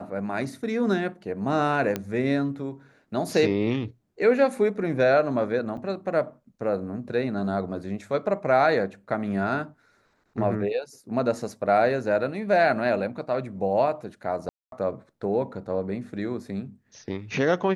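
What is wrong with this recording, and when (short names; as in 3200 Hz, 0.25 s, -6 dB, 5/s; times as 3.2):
1.96 pop -13 dBFS
5.77 gap 4.9 ms
14.49–14.72 gap 0.232 s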